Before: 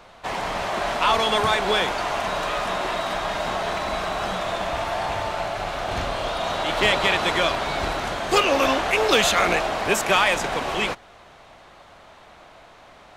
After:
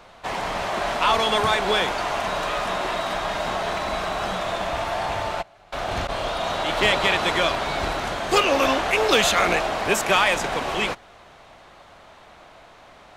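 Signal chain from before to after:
0:05.41–0:06.08: gate pattern "..xxxx.." 173 BPM −24 dB

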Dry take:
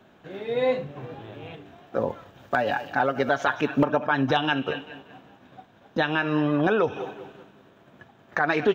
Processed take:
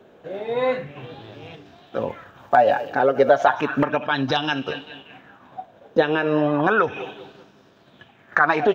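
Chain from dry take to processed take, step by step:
auto-filter bell 0.33 Hz 450–5,300 Hz +13 dB

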